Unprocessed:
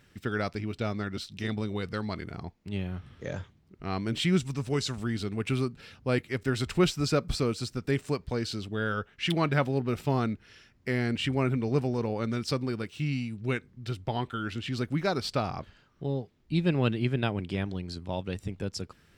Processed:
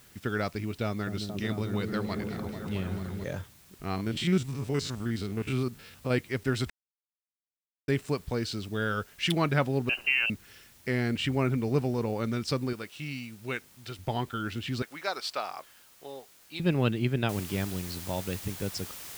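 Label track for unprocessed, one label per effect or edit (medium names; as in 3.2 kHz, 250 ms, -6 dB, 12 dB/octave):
0.850000	3.240000	delay with an opening low-pass 221 ms, low-pass from 400 Hz, each repeat up 1 oct, level -3 dB
3.910000	6.110000	spectrogram pixelated in time every 50 ms
6.700000	7.880000	mute
8.660000	9.330000	treble shelf 5.6 kHz +8 dB
9.890000	10.300000	frequency inversion carrier 2.9 kHz
12.730000	13.990000	bass shelf 330 Hz -11 dB
14.820000	16.600000	high-pass 700 Hz
17.290000	17.290000	noise floor step -58 dB -43 dB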